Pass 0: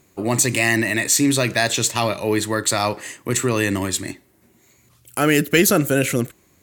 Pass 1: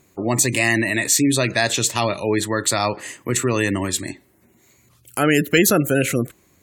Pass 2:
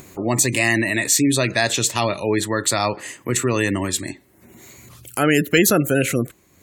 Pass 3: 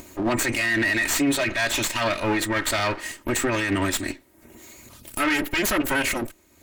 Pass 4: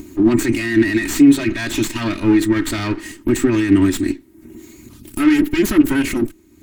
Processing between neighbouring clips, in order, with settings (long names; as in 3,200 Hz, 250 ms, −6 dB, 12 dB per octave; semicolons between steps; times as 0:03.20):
gate on every frequency bin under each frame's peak −30 dB strong
upward compression, threshold −32 dBFS
lower of the sound and its delayed copy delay 3.2 ms; dynamic equaliser 2,000 Hz, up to +8 dB, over −37 dBFS, Q 0.93; brickwall limiter −14 dBFS, peak gain reduction 11.5 dB
low shelf with overshoot 420 Hz +8.5 dB, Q 3; level −1 dB